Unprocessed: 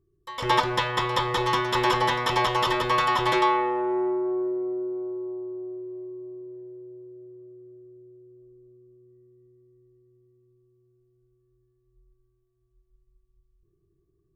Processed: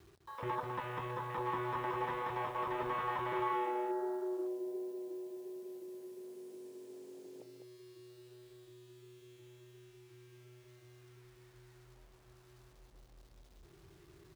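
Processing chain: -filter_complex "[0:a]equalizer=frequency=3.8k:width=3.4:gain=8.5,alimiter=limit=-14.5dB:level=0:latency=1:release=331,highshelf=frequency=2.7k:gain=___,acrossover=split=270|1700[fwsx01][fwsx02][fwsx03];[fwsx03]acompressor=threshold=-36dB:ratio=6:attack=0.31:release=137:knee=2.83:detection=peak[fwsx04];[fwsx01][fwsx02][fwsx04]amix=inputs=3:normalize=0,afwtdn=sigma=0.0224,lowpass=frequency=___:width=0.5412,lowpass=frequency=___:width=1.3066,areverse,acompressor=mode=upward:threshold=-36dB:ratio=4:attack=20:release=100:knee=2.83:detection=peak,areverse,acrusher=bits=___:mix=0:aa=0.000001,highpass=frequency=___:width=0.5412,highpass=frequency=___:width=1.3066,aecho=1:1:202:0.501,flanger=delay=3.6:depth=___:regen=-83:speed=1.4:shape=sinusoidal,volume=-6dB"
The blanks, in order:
6, 6.6k, 6.6k, 8, 41, 41, 3.5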